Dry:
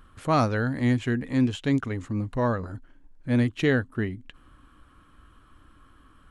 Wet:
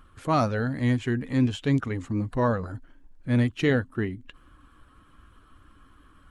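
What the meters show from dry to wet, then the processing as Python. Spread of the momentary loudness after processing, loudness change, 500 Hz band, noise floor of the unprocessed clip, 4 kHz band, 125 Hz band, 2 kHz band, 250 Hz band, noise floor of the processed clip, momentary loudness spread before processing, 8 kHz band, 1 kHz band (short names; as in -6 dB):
9 LU, 0.0 dB, 0.0 dB, -57 dBFS, -0.5 dB, +0.5 dB, -1.5 dB, -0.5 dB, -57 dBFS, 10 LU, n/a, 0.0 dB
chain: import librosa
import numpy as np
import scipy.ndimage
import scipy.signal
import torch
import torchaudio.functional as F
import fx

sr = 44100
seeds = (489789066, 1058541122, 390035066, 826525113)

y = fx.spec_quant(x, sr, step_db=15)
y = fx.rider(y, sr, range_db=10, speed_s=2.0)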